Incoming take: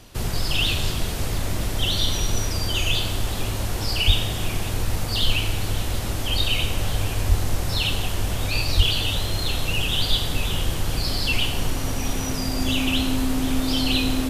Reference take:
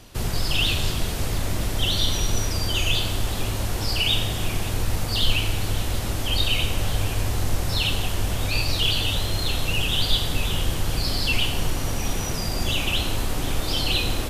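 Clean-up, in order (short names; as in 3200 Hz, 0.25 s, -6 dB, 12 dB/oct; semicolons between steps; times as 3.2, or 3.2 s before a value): notch 260 Hz, Q 30; 4.06–4.18 HPF 140 Hz 24 dB/oct; 7.28–7.4 HPF 140 Hz 24 dB/oct; 8.76–8.88 HPF 140 Hz 24 dB/oct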